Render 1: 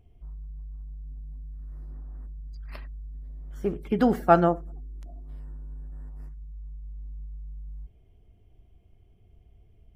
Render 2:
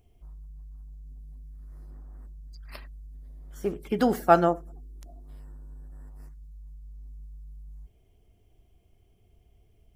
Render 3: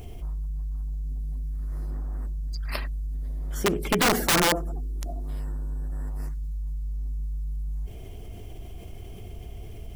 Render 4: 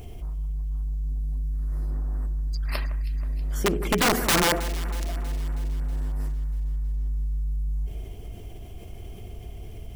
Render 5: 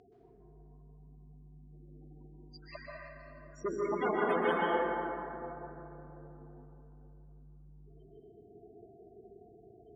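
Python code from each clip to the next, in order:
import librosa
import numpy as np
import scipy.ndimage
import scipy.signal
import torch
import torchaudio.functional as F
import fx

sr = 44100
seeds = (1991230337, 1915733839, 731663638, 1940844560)

y1 = fx.bass_treble(x, sr, bass_db=-5, treble_db=9)
y2 = (np.mod(10.0 ** (18.5 / 20.0) * y1 + 1.0, 2.0) - 1.0) / 10.0 ** (18.5 / 20.0)
y2 = fx.env_flatten(y2, sr, amount_pct=50)
y2 = y2 * librosa.db_to_amplitude(3.0)
y3 = fx.echo_alternate(y2, sr, ms=160, hz=2100.0, feedback_pct=76, wet_db=-13.0)
y4 = fx.spec_topn(y3, sr, count=16)
y4 = fx.bandpass_edges(y4, sr, low_hz=350.0, high_hz=5400.0)
y4 = fx.rev_plate(y4, sr, seeds[0], rt60_s=3.1, hf_ratio=0.35, predelay_ms=115, drr_db=-4.5)
y4 = y4 * librosa.db_to_amplitude(-7.5)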